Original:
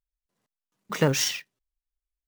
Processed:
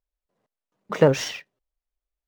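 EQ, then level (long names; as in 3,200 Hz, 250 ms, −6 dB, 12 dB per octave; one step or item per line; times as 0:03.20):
low-pass filter 2,400 Hz 6 dB per octave
parametric band 570 Hz +8 dB 1.2 octaves
+1.5 dB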